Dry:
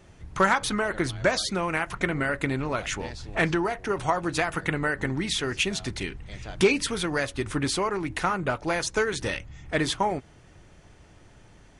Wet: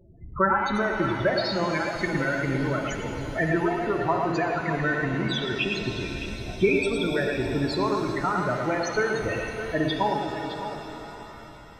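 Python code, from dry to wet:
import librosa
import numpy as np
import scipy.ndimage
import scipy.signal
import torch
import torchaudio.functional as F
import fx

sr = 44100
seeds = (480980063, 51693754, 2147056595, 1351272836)

y = fx.high_shelf(x, sr, hz=4900.0, db=4.0)
y = fx.echo_multitap(y, sr, ms=(57, 110, 612), db=(-10.0, -4.0, -11.0))
y = fx.spec_topn(y, sr, count=16)
y = fx.rev_shimmer(y, sr, seeds[0], rt60_s=4.0, semitones=7, shimmer_db=-8, drr_db=5.0)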